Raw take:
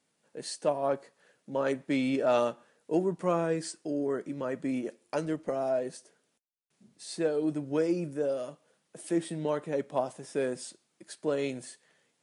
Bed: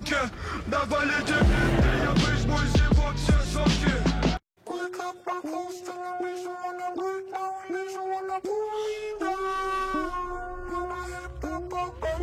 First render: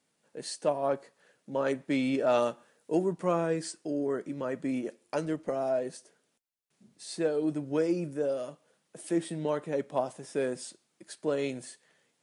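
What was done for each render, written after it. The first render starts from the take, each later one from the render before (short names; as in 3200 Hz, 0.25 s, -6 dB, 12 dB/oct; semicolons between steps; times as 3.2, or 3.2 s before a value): 2.42–3.13 high shelf 7300 Hz +6 dB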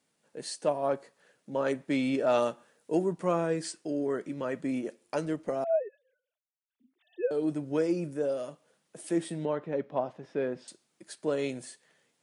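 3.63–4.61 dynamic EQ 2700 Hz, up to +4 dB, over -52 dBFS, Q 0.97; 5.64–7.31 sine-wave speech; 9.45–10.68 air absorption 260 m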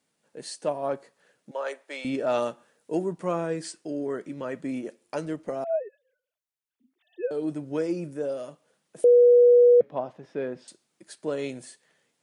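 1.51–2.05 HPF 500 Hz 24 dB/oct; 9.04–9.81 bleep 485 Hz -12 dBFS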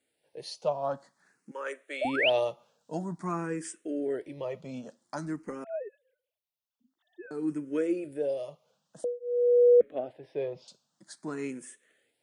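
2.01–2.3 painted sound rise 550–3300 Hz -25 dBFS; endless phaser +0.5 Hz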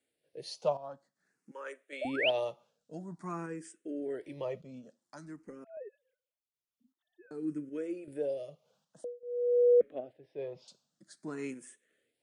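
random-step tremolo 2.6 Hz, depth 70%; rotary speaker horn 1.1 Hz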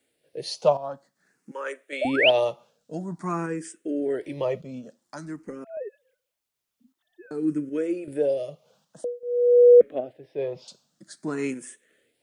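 gain +10.5 dB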